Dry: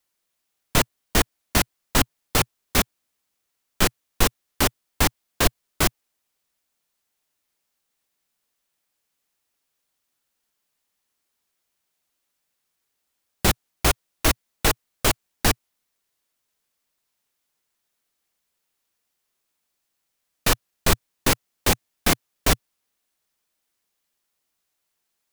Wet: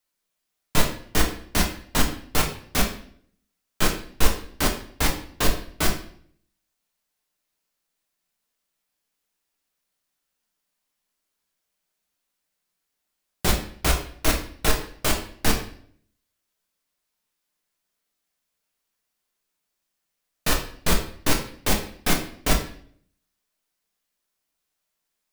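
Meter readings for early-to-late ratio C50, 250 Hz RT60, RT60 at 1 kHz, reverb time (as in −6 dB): 8.0 dB, 0.70 s, 0.50 s, 0.55 s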